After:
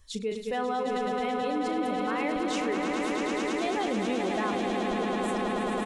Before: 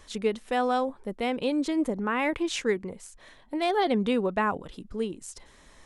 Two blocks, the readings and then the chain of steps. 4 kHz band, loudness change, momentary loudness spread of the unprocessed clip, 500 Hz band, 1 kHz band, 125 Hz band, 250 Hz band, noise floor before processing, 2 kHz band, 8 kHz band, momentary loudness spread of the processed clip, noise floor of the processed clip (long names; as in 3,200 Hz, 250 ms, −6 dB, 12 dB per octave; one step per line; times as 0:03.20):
−0.5 dB, −1.0 dB, 14 LU, −0.5 dB, +0.5 dB, −1.0 dB, −0.5 dB, −56 dBFS, 0.0 dB, −0.5 dB, 1 LU, −36 dBFS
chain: spectral dynamics exaggerated over time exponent 1.5
double-tracking delay 37 ms −11.5 dB
echo that builds up and dies away 108 ms, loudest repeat 8, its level −7.5 dB
in parallel at +3 dB: compressor whose output falls as the input rises −33 dBFS, ratio −1
on the sum: level −7.5 dB